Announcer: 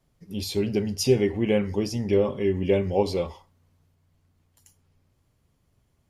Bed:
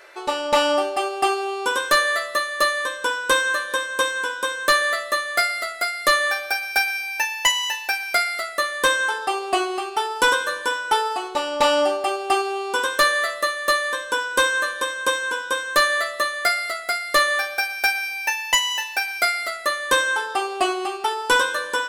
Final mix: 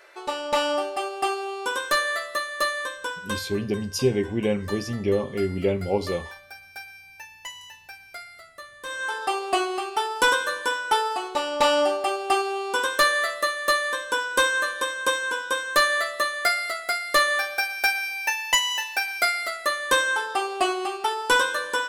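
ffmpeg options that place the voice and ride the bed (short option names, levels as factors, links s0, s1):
-filter_complex "[0:a]adelay=2950,volume=0.841[s0];[1:a]volume=4.22,afade=t=out:st=2.83:d=0.7:silence=0.188365,afade=t=in:st=8.85:d=0.4:silence=0.133352[s1];[s0][s1]amix=inputs=2:normalize=0"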